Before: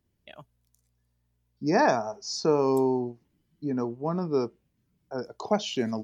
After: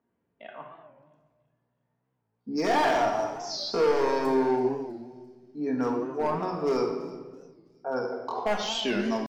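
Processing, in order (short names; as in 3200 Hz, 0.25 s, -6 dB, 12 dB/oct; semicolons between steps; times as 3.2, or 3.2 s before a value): low-pass opened by the level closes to 1100 Hz, open at -22.5 dBFS; de-esser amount 100%; weighting filter A; in parallel at +3 dB: compressor 5:1, threshold -41 dBFS, peak gain reduction 18 dB; on the sum: tempo 0.65×; overloaded stage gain 22.5 dB; on a send: thin delay 0.331 s, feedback 43%, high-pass 4300 Hz, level -16 dB; on the sum: shoebox room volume 1300 m³, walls mixed, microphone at 1.7 m; record warp 45 rpm, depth 160 cents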